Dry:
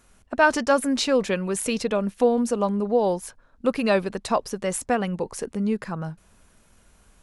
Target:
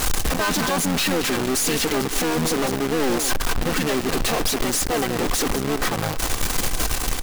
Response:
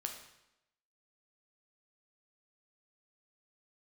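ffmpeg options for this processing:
-filter_complex "[0:a]aeval=exprs='val(0)+0.5*0.0631*sgn(val(0))':c=same,aecho=1:1:2.6:0.82,aecho=1:1:203:0.15,aeval=exprs='(tanh(22.4*val(0)+0.3)-tanh(0.3))/22.4':c=same,asplit=2[a][b];[b]acrusher=bits=5:mode=log:mix=0:aa=0.000001,volume=-10dB[c];[a][c]amix=inputs=2:normalize=0,asplit=4[d][e][f][g];[e]asetrate=29433,aresample=44100,atempo=1.49831,volume=0dB[h];[f]asetrate=33038,aresample=44100,atempo=1.33484,volume=-16dB[i];[g]asetrate=37084,aresample=44100,atempo=1.18921,volume=-13dB[j];[d][h][i][j]amix=inputs=4:normalize=0,acrusher=bits=5:dc=4:mix=0:aa=0.000001,volume=1.5dB"

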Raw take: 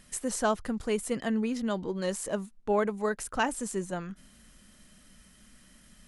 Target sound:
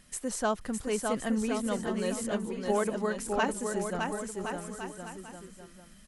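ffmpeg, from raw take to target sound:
-af "aecho=1:1:610|1068|1411|1668|1861:0.631|0.398|0.251|0.158|0.1,volume=-2dB"

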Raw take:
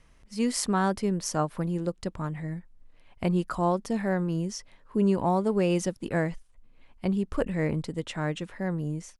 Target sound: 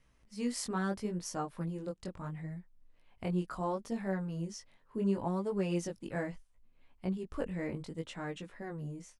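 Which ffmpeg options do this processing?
-af "flanger=delay=15.5:depth=6.8:speed=0.72,volume=-6dB"

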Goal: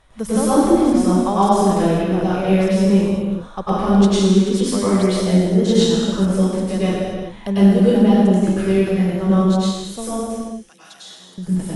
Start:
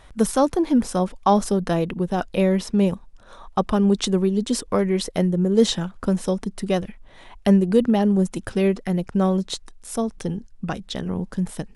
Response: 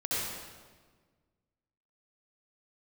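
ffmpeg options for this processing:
-filter_complex "[0:a]asettb=1/sr,asplit=3[a][b][c];[a]atrim=end=10.154[d];[b]atrim=start=10.15:end=11.38,asetpts=PTS-STARTPTS,afade=t=in:d=0.004:c=qsin,afade=t=out:st=1.226:d=0.004:c=qsin,aderivative[e];[c]atrim=start=11.376[f];[d][e]acrossfade=d=0.004:c1=hsin:c2=qsin[g];[g][f]acrossfade=d=0.004:c1=qsin:c2=hsin[h];[1:a]atrim=start_sample=2205,afade=t=out:st=0.4:d=0.01,atrim=end_sample=18081,asetrate=28665,aresample=44100[i];[h][i]afir=irnorm=-1:irlink=0,volume=-6dB"

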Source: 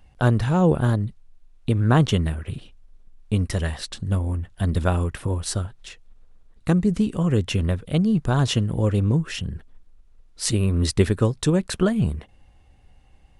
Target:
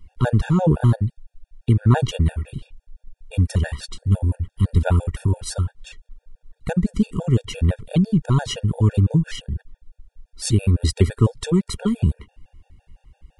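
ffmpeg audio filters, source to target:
-af "lowshelf=f=120:g=9.5,afftfilt=real='re*gt(sin(2*PI*5.9*pts/sr)*(1-2*mod(floor(b*sr/1024/470),2)),0)':imag='im*gt(sin(2*PI*5.9*pts/sr)*(1-2*mod(floor(b*sr/1024/470),2)),0)':win_size=1024:overlap=0.75,volume=1.5dB"

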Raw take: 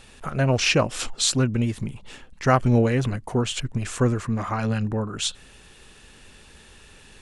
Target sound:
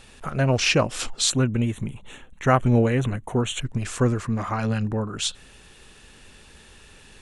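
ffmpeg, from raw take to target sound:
-filter_complex "[0:a]asettb=1/sr,asplit=3[a][b][c];[a]atrim=end=1.304[d];[b]atrim=start=1.3:end=3.61,asetpts=PTS-STARTPTS,afade=t=in:d=0.004:c=qsin,afade=t=out:st=2.306:d=0.004:c=qsin,asuperstop=centerf=4900:order=4:qfactor=2.3[e];[c]atrim=start=3.606[f];[d][e]acrossfade=d=0.004:c1=hsin:c2=qsin[g];[g][f]acrossfade=d=0.004:c1=qsin:c2=hsin"

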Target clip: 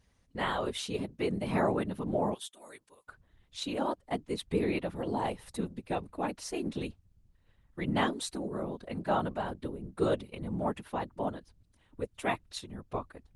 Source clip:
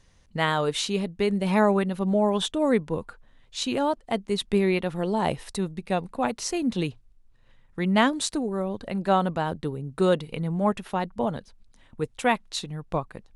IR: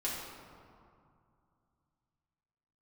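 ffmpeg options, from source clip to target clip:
-filter_complex "[0:a]asettb=1/sr,asplit=3[a][b][c];[a]atrim=end=2.344[d];[b]atrim=start=2.34:end=3.08,asetpts=PTS-STARTPTS,afade=t=in:d=0.004:c=qsin,afade=t=out:st=0.736:d=0.004:c=qsin,aderivative[e];[c]atrim=start=3.076[f];[d][e]acrossfade=d=0.004:c1=hsin:c2=qsin[g];[g][f]acrossfade=d=0.004:c1=qsin:c2=hsin,afftfilt=real='hypot(re,im)*cos(2*PI*random(0))':imag='hypot(re,im)*sin(2*PI*random(1))':win_size=512:overlap=0.75,equalizer=f=140:t=o:w=0.39:g=-7,volume=-1dB" -ar 48000 -c:a libopus -b:a 32k

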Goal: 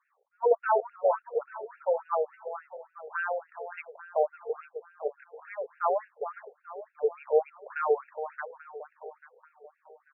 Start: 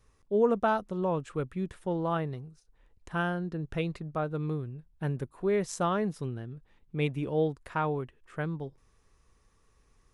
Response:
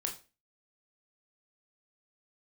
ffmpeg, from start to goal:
-filter_complex "[0:a]acrossover=split=1300[a][b];[a]acontrast=52[c];[c][b]amix=inputs=2:normalize=0,highpass=f=310:t=q:w=3.8,aecho=1:1:419|838|1257|1676|2095|2514:0.266|0.146|0.0805|0.0443|0.0243|0.0134,afftfilt=real='re*between(b*sr/1024,570*pow(2000/570,0.5+0.5*sin(2*PI*3.5*pts/sr))/1.41,570*pow(2000/570,0.5+0.5*sin(2*PI*3.5*pts/sr))*1.41)':imag='im*between(b*sr/1024,570*pow(2000/570,0.5+0.5*sin(2*PI*3.5*pts/sr))/1.41,570*pow(2000/570,0.5+0.5*sin(2*PI*3.5*pts/sr))*1.41)':win_size=1024:overlap=0.75"

